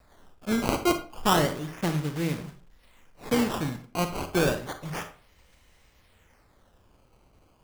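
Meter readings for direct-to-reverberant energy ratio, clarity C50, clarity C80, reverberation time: 7.5 dB, 10.5 dB, 16.0 dB, 0.40 s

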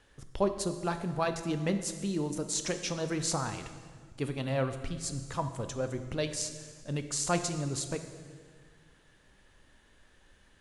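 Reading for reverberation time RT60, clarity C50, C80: 1.8 s, 9.5 dB, 11.0 dB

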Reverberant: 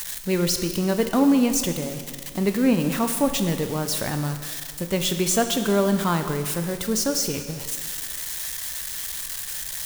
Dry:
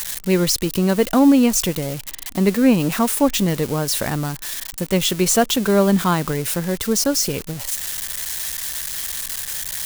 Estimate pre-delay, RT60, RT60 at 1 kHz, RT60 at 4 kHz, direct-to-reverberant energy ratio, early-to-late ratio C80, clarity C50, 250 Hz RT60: 6 ms, 1.8 s, 1.8 s, 1.7 s, 7.0 dB, 9.5 dB, 8.5 dB, 1.8 s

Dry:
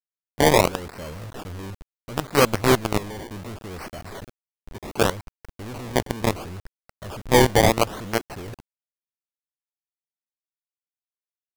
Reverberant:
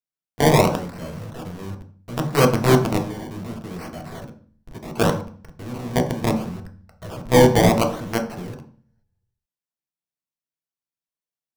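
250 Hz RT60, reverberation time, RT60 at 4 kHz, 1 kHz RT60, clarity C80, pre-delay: 0.80 s, 0.45 s, 0.40 s, 0.40 s, 14.5 dB, 3 ms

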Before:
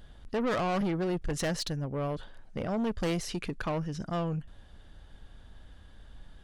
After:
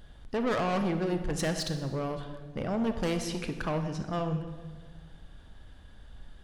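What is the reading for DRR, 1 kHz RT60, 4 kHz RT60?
7.0 dB, 1.5 s, 1.2 s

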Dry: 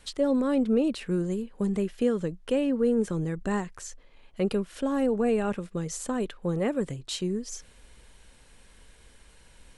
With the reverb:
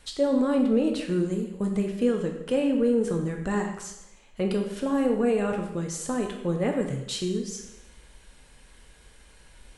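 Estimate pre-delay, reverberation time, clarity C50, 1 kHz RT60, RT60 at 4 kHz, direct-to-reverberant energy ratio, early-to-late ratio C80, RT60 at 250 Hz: 5 ms, 0.85 s, 6.0 dB, 0.85 s, 0.80 s, 2.5 dB, 8.5 dB, 0.90 s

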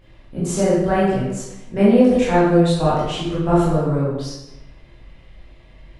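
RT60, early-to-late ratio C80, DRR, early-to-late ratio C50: 1.0 s, 2.5 dB, −9.5 dB, −1.0 dB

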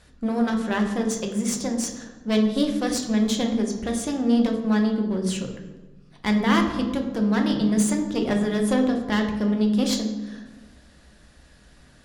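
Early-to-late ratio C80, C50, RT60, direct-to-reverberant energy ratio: 9.0 dB, 7.0 dB, 1.2 s, 2.5 dB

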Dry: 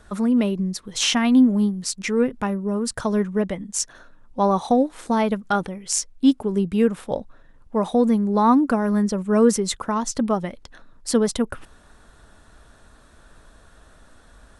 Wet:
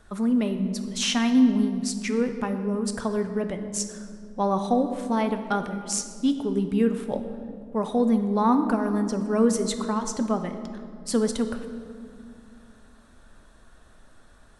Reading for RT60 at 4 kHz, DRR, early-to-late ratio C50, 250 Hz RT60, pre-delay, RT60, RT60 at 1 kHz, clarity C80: 1.3 s, 7.0 dB, 9.0 dB, 3.4 s, 3 ms, 2.4 s, 2.1 s, 10.0 dB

